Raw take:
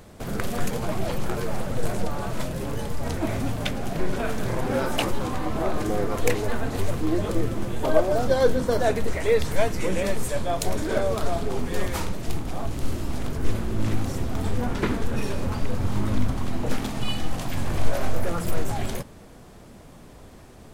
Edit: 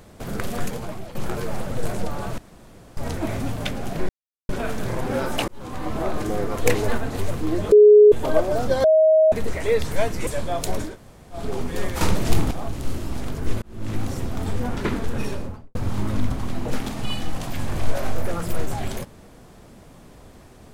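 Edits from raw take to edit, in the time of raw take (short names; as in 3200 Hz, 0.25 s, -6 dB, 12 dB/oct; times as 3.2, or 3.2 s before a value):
0.59–1.15 fade out, to -14.5 dB
2.38–2.97 room tone
4.09 insert silence 0.40 s
5.08–5.49 fade in
6.26–6.58 gain +3.5 dB
7.32–7.72 bleep 419 Hz -6.5 dBFS
8.44–8.92 bleep 631 Hz -11.5 dBFS
9.87–10.25 cut
10.87–11.36 room tone, crossfade 0.16 s
11.99–12.49 gain +9 dB
13.6–14.01 fade in
15.22–15.73 studio fade out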